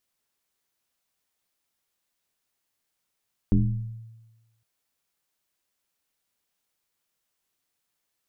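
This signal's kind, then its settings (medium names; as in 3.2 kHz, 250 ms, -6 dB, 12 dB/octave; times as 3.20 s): FM tone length 1.11 s, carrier 113 Hz, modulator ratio 0.8, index 1.9, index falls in 1.10 s exponential, decay 1.16 s, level -14 dB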